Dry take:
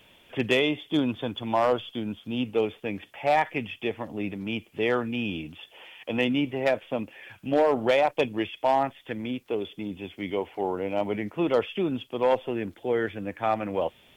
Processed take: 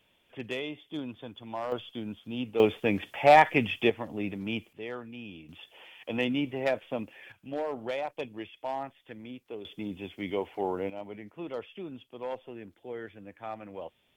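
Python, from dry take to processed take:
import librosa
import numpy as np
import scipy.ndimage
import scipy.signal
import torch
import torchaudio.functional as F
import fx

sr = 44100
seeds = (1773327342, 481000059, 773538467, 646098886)

y = fx.gain(x, sr, db=fx.steps((0.0, -12.0), (1.72, -5.5), (2.6, 5.0), (3.9, -2.0), (4.73, -13.5), (5.49, -4.0), (7.32, -11.5), (9.65, -2.5), (10.9, -13.5)))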